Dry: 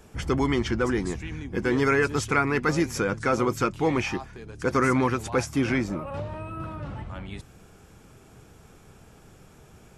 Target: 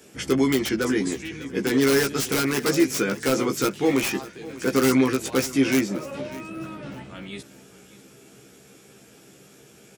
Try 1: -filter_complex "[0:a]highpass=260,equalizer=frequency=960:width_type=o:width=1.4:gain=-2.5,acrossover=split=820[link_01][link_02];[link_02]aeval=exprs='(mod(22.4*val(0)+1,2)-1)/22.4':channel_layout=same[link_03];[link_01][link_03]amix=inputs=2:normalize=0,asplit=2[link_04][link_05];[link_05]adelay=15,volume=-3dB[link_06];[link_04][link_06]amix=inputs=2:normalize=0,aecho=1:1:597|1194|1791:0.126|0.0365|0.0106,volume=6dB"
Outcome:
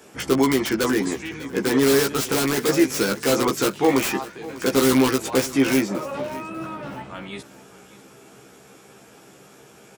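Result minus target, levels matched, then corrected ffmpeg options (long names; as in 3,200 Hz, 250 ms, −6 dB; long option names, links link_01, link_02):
1,000 Hz band +3.0 dB
-filter_complex "[0:a]highpass=260,equalizer=frequency=960:width_type=o:width=1.4:gain=-12.5,acrossover=split=820[link_01][link_02];[link_02]aeval=exprs='(mod(22.4*val(0)+1,2)-1)/22.4':channel_layout=same[link_03];[link_01][link_03]amix=inputs=2:normalize=0,asplit=2[link_04][link_05];[link_05]adelay=15,volume=-3dB[link_06];[link_04][link_06]amix=inputs=2:normalize=0,aecho=1:1:597|1194|1791:0.126|0.0365|0.0106,volume=6dB"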